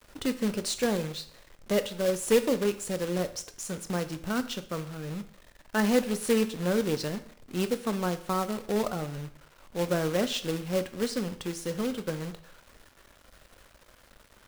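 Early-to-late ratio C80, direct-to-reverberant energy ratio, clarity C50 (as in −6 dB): 17.5 dB, 10.5 dB, 14.0 dB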